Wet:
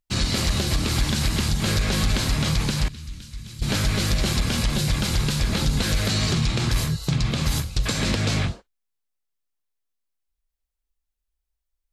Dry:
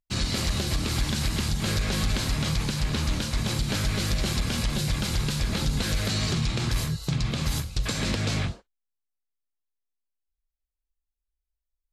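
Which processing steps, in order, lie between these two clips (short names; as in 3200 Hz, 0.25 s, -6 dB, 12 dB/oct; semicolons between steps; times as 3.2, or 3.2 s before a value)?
2.88–3.62 passive tone stack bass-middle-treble 6-0-2; gain +4 dB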